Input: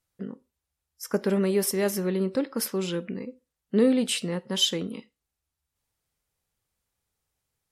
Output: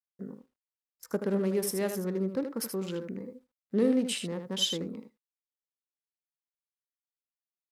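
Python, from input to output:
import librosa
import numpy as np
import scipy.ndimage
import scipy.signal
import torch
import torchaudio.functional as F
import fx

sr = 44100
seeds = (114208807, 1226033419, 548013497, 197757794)

y = fx.wiener(x, sr, points=15)
y = fx.quant_dither(y, sr, seeds[0], bits=12, dither='none')
y = y + 10.0 ** (-8.0 / 20.0) * np.pad(y, (int(78 * sr / 1000.0), 0))[:len(y)]
y = y * librosa.db_to_amplitude(-5.0)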